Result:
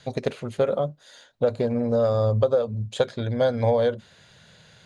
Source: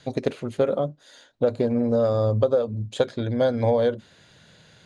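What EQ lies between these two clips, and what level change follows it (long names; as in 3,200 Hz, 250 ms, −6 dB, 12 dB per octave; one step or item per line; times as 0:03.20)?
parametric band 300 Hz −8 dB 0.64 octaves
+1.0 dB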